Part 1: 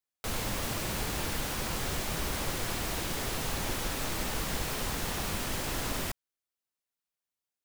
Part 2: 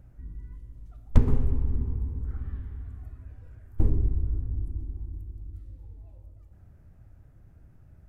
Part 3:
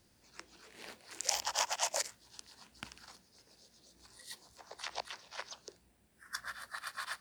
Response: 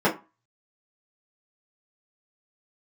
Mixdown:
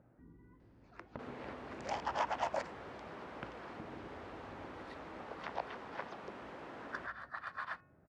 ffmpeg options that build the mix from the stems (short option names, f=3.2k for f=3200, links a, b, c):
-filter_complex "[0:a]adelay=950,volume=-4.5dB[a];[1:a]acompressor=threshold=-26dB:ratio=6,volume=1dB[b];[2:a]adelay=600,volume=3dB[c];[a][b]amix=inputs=2:normalize=0,highpass=270,acompressor=threshold=-42dB:ratio=4,volume=0dB[d];[c][d]amix=inputs=2:normalize=0,lowpass=1.5k,bandreject=f=363.5:t=h:w=4,bandreject=f=727:t=h:w=4,bandreject=f=1.0905k:t=h:w=4,bandreject=f=1.454k:t=h:w=4,bandreject=f=1.8175k:t=h:w=4,bandreject=f=2.181k:t=h:w=4,bandreject=f=2.5445k:t=h:w=4,bandreject=f=2.908k:t=h:w=4"